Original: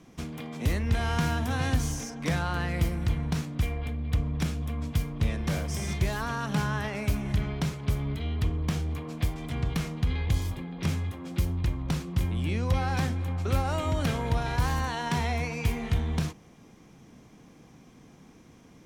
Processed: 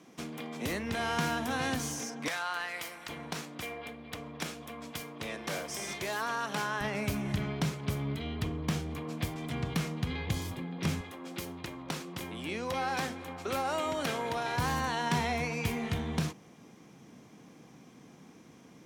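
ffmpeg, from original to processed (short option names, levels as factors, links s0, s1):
-af "asetnsamples=n=441:p=0,asendcmd='2.28 highpass f 860;3.09 highpass f 380;6.81 highpass f 140;11.01 highpass f 320;14.57 highpass f 140',highpass=230"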